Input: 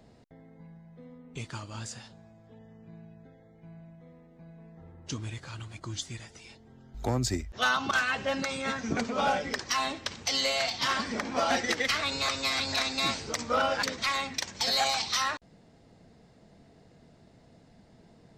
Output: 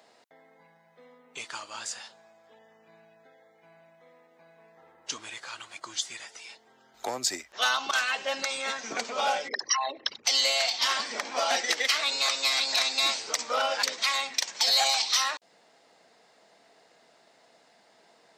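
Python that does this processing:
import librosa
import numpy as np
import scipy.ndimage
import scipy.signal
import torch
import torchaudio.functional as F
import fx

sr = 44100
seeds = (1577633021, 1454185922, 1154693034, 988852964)

y = fx.envelope_sharpen(x, sr, power=3.0, at=(9.47, 10.24), fade=0.02)
y = scipy.signal.sosfilt(scipy.signal.butter(2, 730.0, 'highpass', fs=sr, output='sos'), y)
y = fx.dynamic_eq(y, sr, hz=1400.0, q=0.93, threshold_db=-43.0, ratio=4.0, max_db=-7)
y = y * librosa.db_to_amplitude(6.0)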